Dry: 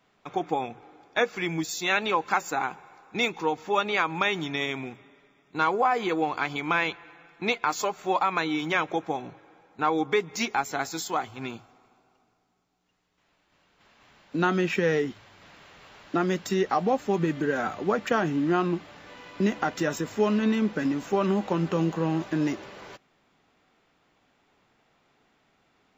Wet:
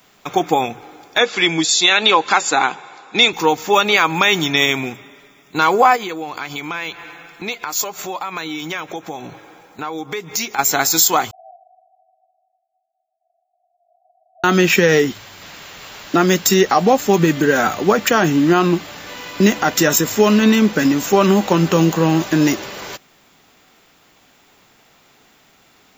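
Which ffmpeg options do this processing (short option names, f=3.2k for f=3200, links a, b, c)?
-filter_complex "[0:a]asettb=1/sr,asplit=3[a][b][c];[a]atrim=end=1.184[d];[b]atrim=start=1.18:end=3.33,asetpts=PTS-STARTPTS,afade=t=in:d=0.004:c=qsin,afade=t=out:st=2.146:d=0.004:c=qsin,highpass=160,equalizer=f=180:t=q:w=4:g=-4,equalizer=f=3.5k:t=q:w=4:g=6,equalizer=f=5.9k:t=q:w=4:g=-5,lowpass=f=7k:w=0.5412,lowpass=f=7k:w=1.3066[e];[c]atrim=start=3.326[f];[d][e]acrossfade=d=0.004:c1=hsin:c2=qsin[g];[g][f]acrossfade=d=0.004:c1=qsin:c2=hsin,asplit=3[h][i][j];[h]afade=t=out:st=5.95:d=0.02[k];[i]acompressor=threshold=-41dB:ratio=2.5:attack=3.2:release=140:knee=1:detection=peak,afade=t=in:st=5.95:d=0.02,afade=t=out:st=10.58:d=0.02[l];[j]afade=t=in:st=10.58:d=0.02[m];[k][l][m]amix=inputs=3:normalize=0,asettb=1/sr,asplit=3[n][o][p];[n]atrim=end=11.314[q];[o]atrim=start=11.31:end=14.44,asetpts=PTS-STARTPTS,afade=t=in:d=0.004:c=qsin,afade=t=out:st=3.126:d=0.004:c=qsin,asuperpass=centerf=700:order=20:qfactor=5.1[r];[p]atrim=start=14.436[s];[q][r]acrossfade=d=0.004:c1=hsin:c2=qsin[t];[t][s]acrossfade=d=0.004:c1=qsin:c2=hsin,aemphasis=mode=production:type=75fm,alimiter=level_in=13dB:limit=-1dB:release=50:level=0:latency=1,volume=-1dB"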